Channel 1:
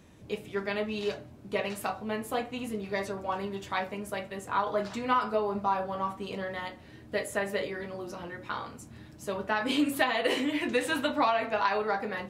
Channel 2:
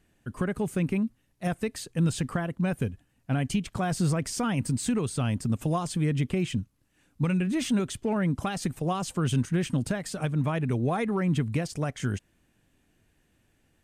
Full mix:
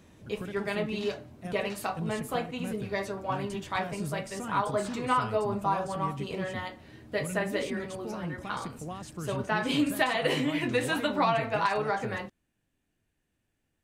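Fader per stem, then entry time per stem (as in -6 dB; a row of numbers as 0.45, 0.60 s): 0.0, -11.0 dB; 0.00, 0.00 s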